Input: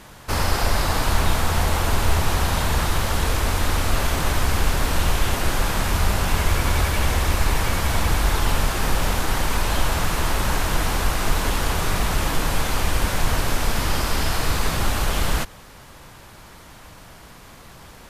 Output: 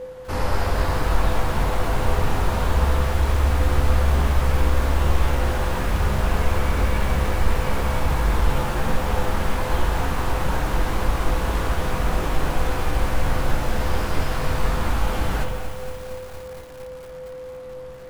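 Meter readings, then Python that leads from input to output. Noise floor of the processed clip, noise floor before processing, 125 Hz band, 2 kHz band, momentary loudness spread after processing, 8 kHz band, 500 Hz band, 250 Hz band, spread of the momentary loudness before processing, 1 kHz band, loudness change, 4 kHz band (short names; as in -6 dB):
-36 dBFS, -44 dBFS, +1.0 dB, -3.5 dB, 13 LU, -10.0 dB, +2.0 dB, 0.0 dB, 2 LU, -1.0 dB, -1.0 dB, -7.5 dB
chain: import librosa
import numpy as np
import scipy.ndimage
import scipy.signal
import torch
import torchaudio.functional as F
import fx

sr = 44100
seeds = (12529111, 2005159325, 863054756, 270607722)

y = x + 10.0 ** (-29.0 / 20.0) * np.sin(2.0 * np.pi * 510.0 * np.arange(len(x)) / sr)
y = fx.rev_spring(y, sr, rt60_s=1.4, pass_ms=(44, 58), chirp_ms=60, drr_db=2.5)
y = fx.chorus_voices(y, sr, voices=6, hz=0.22, base_ms=18, depth_ms=4.3, mix_pct=30)
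y = fx.high_shelf(y, sr, hz=2300.0, db=-9.5)
y = fx.echo_crushed(y, sr, ms=230, feedback_pct=80, bits=6, wet_db=-11.5)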